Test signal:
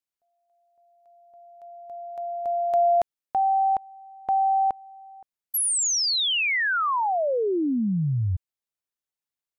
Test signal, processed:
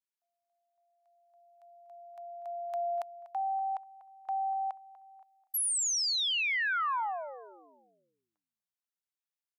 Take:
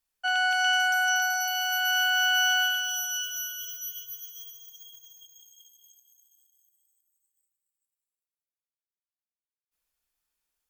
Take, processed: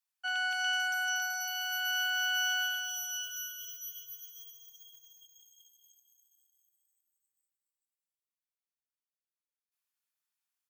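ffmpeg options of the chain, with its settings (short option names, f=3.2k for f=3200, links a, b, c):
-filter_complex "[0:a]highpass=f=820:w=0.5412,highpass=f=820:w=1.3066,asplit=2[a][b];[b]adelay=243,lowpass=f=2.8k:p=1,volume=-15.5dB,asplit=2[c][d];[d]adelay=243,lowpass=f=2.8k:p=1,volume=0.36,asplit=2[e][f];[f]adelay=243,lowpass=f=2.8k:p=1,volume=0.36[g];[a][c][e][g]amix=inputs=4:normalize=0,volume=-6.5dB"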